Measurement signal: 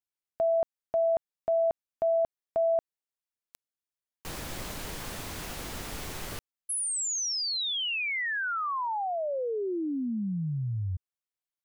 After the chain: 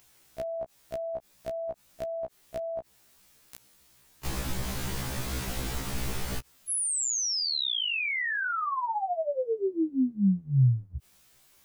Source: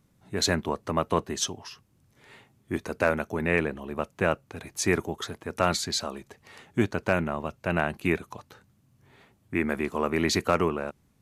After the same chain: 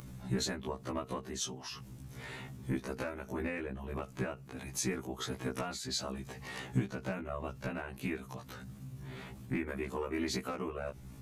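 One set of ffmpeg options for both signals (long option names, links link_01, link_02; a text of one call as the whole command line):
ffmpeg -i in.wav -af "acompressor=threshold=-32dB:ratio=16:attack=0.76:release=471:detection=rms,bass=frequency=250:gain=7,treble=frequency=4000:gain=1,acompressor=mode=upward:threshold=-45dB:ratio=2.5:attack=2.9:release=37:knee=2.83:detection=peak,afftfilt=real='re*1.73*eq(mod(b,3),0)':imag='im*1.73*eq(mod(b,3),0)':win_size=2048:overlap=0.75,volume=7dB" out.wav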